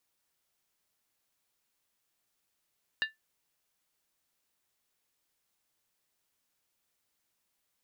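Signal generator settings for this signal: skin hit, lowest mode 1.76 kHz, decay 0.16 s, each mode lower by 5 dB, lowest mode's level -23.5 dB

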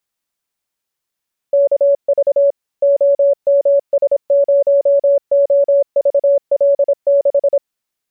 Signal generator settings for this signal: Morse "KV OMS0OVL6" 26 wpm 563 Hz -8 dBFS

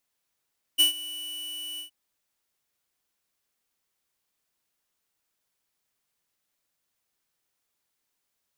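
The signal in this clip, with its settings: ADSR square 2.96 kHz, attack 24 ms, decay 120 ms, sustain -19 dB, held 1.01 s, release 110 ms -17.5 dBFS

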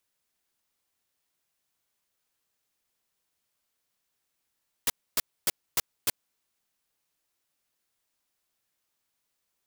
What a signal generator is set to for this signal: noise bursts white, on 0.03 s, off 0.27 s, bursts 5, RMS -24 dBFS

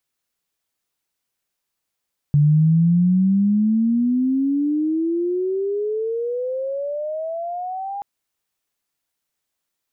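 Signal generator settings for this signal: gliding synth tone sine, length 5.68 s, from 144 Hz, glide +30 st, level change -14.5 dB, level -11 dB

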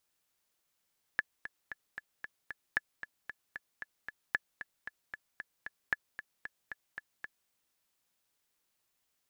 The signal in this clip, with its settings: metronome 228 bpm, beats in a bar 6, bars 4, 1.72 kHz, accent 12.5 dB -15 dBFS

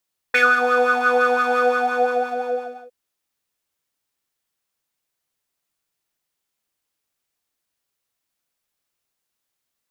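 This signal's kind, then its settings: synth patch with filter wobble B4, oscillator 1 square, oscillator 2 square, interval 0 st, oscillator 2 level -3.5 dB, sub -3 dB, noise -7.5 dB, filter bandpass, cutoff 670 Hz, Q 8.2, filter envelope 1.5 oct, attack 10 ms, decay 0.19 s, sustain -4 dB, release 1.34 s, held 1.22 s, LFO 5.8 Hz, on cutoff 0.3 oct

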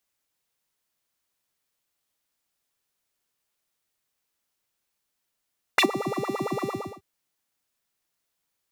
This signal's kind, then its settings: synth patch with filter wobble G4, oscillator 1 square, oscillator 2 square, interval +12 st, filter highpass, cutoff 280 Hz, Q 7.3, filter envelope 2 oct, filter decay 0.11 s, filter sustain 35%, attack 5 ms, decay 0.08 s, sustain -18.5 dB, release 0.35 s, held 0.88 s, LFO 8.8 Hz, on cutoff 1.9 oct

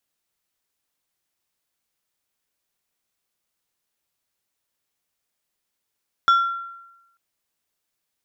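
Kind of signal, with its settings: glass hit plate, lowest mode 1.37 kHz, decay 0.99 s, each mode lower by 12 dB, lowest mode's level -10.5 dB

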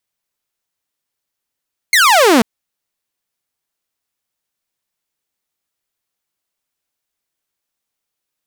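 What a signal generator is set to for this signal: laser zap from 2.2 kHz, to 210 Hz, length 0.49 s saw, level -4.5 dB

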